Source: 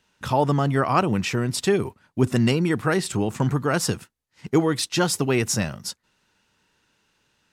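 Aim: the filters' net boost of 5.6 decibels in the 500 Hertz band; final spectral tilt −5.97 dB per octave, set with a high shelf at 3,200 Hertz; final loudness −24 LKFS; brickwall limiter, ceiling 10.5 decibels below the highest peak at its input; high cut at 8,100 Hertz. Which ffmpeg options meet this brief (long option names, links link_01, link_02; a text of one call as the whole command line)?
ffmpeg -i in.wav -af "lowpass=8100,equalizer=frequency=500:width_type=o:gain=7.5,highshelf=frequency=3200:gain=-6,volume=1dB,alimiter=limit=-13.5dB:level=0:latency=1" out.wav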